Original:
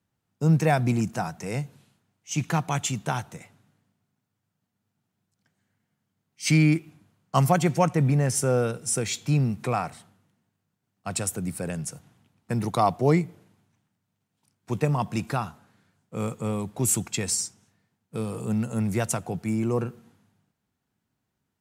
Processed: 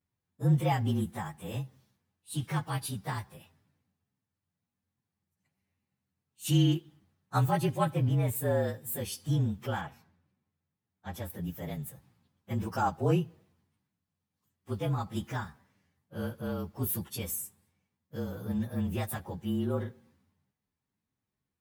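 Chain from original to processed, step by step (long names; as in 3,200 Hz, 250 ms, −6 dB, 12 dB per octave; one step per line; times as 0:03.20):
partials spread apart or drawn together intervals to 112%
0:09.81–0:11.30: high-shelf EQ 6,100 Hz −12 dB
level −4.5 dB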